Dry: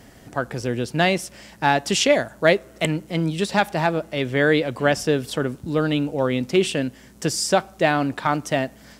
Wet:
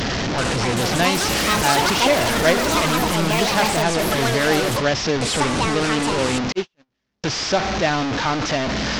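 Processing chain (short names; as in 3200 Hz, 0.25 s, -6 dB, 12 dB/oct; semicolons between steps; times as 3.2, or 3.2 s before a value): delta modulation 32 kbps, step -15 dBFS; 6.52–7.24 gate -14 dBFS, range -54 dB; echoes that change speed 0.383 s, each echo +7 st, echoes 3; gain -1.5 dB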